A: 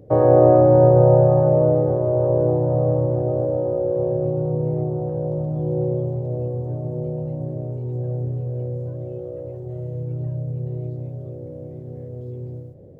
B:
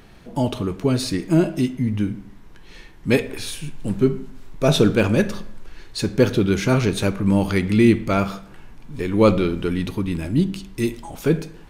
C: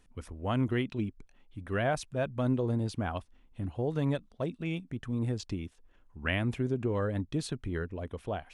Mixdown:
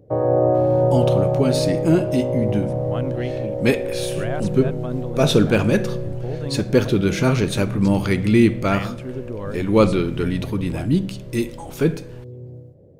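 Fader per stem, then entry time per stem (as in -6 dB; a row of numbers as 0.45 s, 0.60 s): -4.5 dB, 0.0 dB, 0.0 dB; 0.00 s, 0.55 s, 2.45 s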